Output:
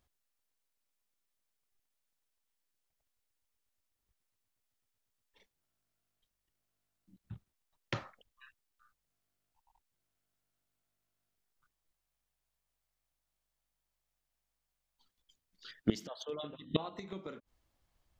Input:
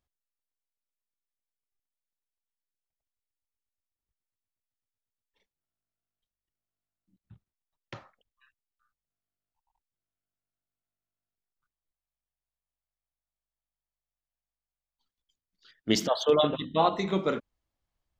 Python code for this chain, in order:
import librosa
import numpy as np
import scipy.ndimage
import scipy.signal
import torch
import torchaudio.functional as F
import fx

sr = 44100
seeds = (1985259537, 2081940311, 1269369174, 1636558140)

y = fx.gate_flip(x, sr, shuts_db=-22.0, range_db=-24)
y = fx.dynamic_eq(y, sr, hz=780.0, q=1.1, threshold_db=-54.0, ratio=4.0, max_db=-4)
y = y * 10.0 ** (7.0 / 20.0)